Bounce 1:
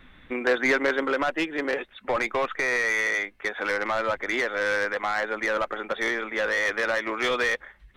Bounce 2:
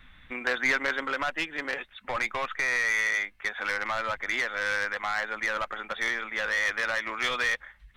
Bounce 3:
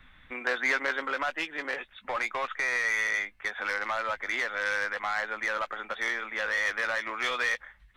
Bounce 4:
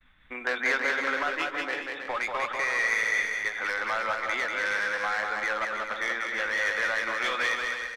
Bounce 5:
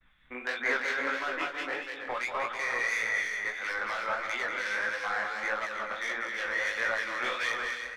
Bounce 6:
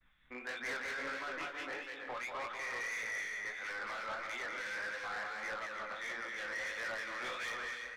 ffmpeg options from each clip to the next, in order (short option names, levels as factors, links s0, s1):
-af "equalizer=f=380:w=0.77:g=-12.5"
-filter_complex "[0:a]acrossover=split=280|2100[s0][s1][s2];[s0]acompressor=threshold=0.00178:ratio=4[s3];[s2]flanger=delay=17:depth=2.7:speed=1.2[s4];[s3][s1][s4]amix=inputs=3:normalize=0"
-af "agate=range=0.0224:threshold=0.00355:ratio=3:detection=peak,aecho=1:1:190|323|416.1|481.3|526.9:0.631|0.398|0.251|0.158|0.1"
-filter_complex "[0:a]acrossover=split=2100[s0][s1];[s0]aeval=exprs='val(0)*(1-0.5/2+0.5/2*cos(2*PI*2.9*n/s))':c=same[s2];[s1]aeval=exprs='val(0)*(1-0.5/2-0.5/2*cos(2*PI*2.9*n/s))':c=same[s3];[s2][s3]amix=inputs=2:normalize=0,flanger=delay=17:depth=7.9:speed=1.6,volume=1.26"
-af "asoftclip=type=tanh:threshold=0.0316,volume=0.531"